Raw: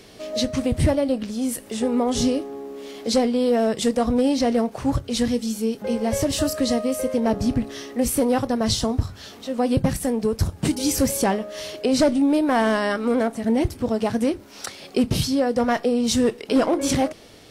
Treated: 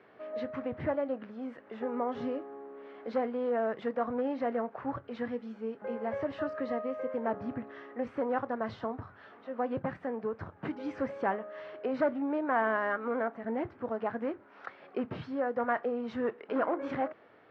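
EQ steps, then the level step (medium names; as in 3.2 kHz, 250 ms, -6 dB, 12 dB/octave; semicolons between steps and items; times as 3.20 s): high-pass 110 Hz 24 dB/octave; four-pole ladder low-pass 1.9 kHz, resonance 35%; peaking EQ 150 Hz -10.5 dB 2.5 oct; 0.0 dB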